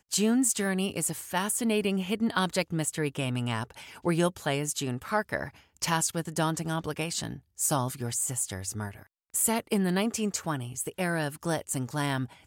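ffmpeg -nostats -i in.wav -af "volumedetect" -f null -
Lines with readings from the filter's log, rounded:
mean_volume: -29.9 dB
max_volume: -12.4 dB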